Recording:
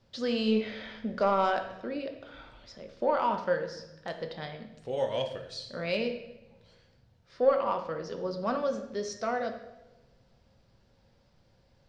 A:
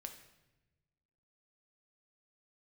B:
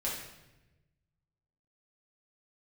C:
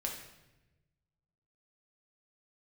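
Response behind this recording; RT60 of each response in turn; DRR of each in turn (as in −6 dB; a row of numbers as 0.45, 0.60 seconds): A; 1.0, 1.0, 1.0 seconds; 4.5, −6.5, −0.5 decibels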